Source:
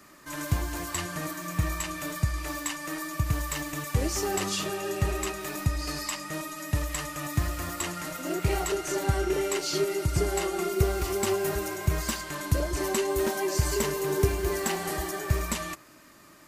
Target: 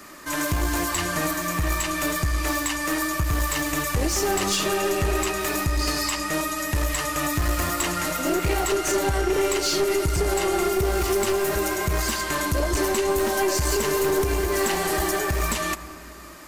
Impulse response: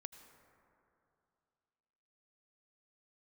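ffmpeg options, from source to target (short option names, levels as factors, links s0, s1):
-filter_complex "[0:a]equalizer=f=130:t=o:w=0.9:g=-7.5,alimiter=limit=0.075:level=0:latency=1:release=137,aeval=exprs='clip(val(0),-1,0.0282)':c=same,asplit=2[s0][s1];[1:a]atrim=start_sample=2205[s2];[s1][s2]afir=irnorm=-1:irlink=0,volume=1.78[s3];[s0][s3]amix=inputs=2:normalize=0,volume=1.68"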